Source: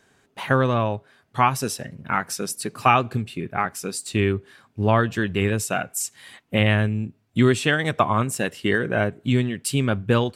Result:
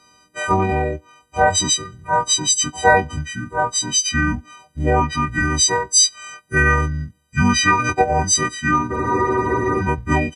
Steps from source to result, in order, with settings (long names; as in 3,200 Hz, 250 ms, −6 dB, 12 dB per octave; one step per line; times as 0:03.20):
every partial snapped to a pitch grid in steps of 4 semitones
pitch shifter −6.5 semitones
frozen spectrum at 0:08.93, 0.89 s
level +1 dB